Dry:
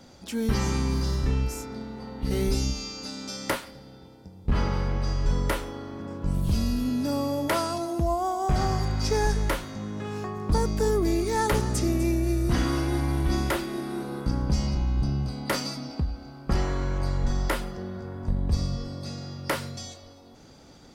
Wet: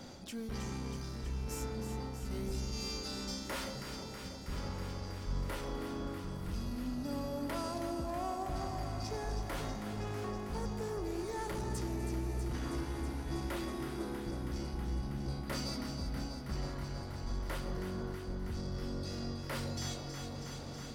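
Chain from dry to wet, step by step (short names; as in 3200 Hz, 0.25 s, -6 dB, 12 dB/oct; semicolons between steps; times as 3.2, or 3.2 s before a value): reverse; compressor 6:1, threshold -38 dBFS, peak gain reduction 18.5 dB; reverse; soft clip -35.5 dBFS, distortion -17 dB; echo with dull and thin repeats by turns 0.161 s, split 910 Hz, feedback 90%, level -7 dB; gain +2 dB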